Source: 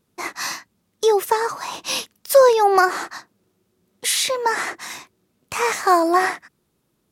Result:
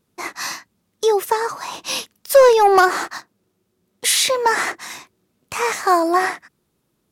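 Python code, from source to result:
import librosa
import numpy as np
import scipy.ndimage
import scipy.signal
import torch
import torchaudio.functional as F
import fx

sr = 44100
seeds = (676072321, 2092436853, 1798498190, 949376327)

y = fx.leveller(x, sr, passes=1, at=(2.35, 4.72))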